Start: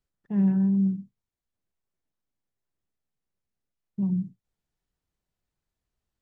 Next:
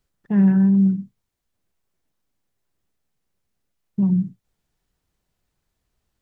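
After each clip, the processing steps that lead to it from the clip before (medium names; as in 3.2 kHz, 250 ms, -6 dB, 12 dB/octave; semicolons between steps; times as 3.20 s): dynamic bell 1.6 kHz, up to +7 dB, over -57 dBFS, Q 1.7; in parallel at -3 dB: compression, threshold -30 dBFS, peak gain reduction 11 dB; on the sum: trim +5 dB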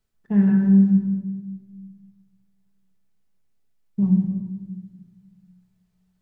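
reverberation RT60 1.4 s, pre-delay 5 ms, DRR 1 dB; trim -4.5 dB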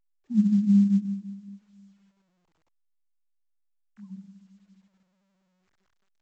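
formants replaced by sine waves; band-pass sweep 240 Hz -> 1.6 kHz, 0.64–3.38 s; A-law 128 kbps 16 kHz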